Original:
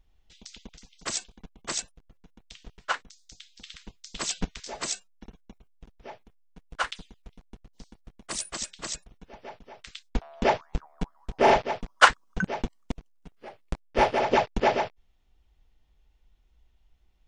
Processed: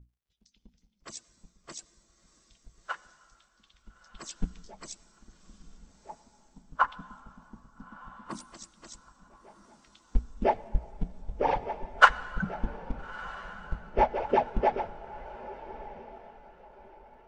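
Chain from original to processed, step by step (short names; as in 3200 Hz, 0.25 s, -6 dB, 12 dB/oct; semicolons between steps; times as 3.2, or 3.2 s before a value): median-filter separation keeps percussive; reverb RT60 3.5 s, pre-delay 60 ms, DRR 10.5 dB; crackle 140/s -43 dBFS; 6.09–8.44 ten-band EQ 125 Hz +5 dB, 250 Hz +11 dB, 1000 Hz +11 dB, 8000 Hz -3 dB; hum 60 Hz, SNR 13 dB; low shelf 290 Hz +4 dB; notches 60/120/180/240/300 Hz; diffused feedback echo 1.305 s, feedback 49%, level -10 dB; spectral expander 1.5:1; gain -1.5 dB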